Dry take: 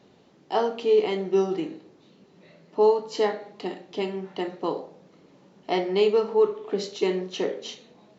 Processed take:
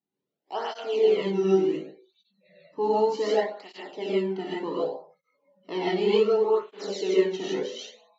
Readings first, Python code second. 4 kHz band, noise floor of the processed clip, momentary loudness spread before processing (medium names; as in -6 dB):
-0.5 dB, -85 dBFS, 14 LU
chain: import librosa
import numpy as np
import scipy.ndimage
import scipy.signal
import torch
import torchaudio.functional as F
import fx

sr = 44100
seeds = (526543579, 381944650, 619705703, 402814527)

y = fx.noise_reduce_blind(x, sr, reduce_db=29)
y = fx.rev_gated(y, sr, seeds[0], gate_ms=180, shape='rising', drr_db=-7.5)
y = fx.flanger_cancel(y, sr, hz=0.67, depth_ms=2.0)
y = F.gain(torch.from_numpy(y), -5.5).numpy()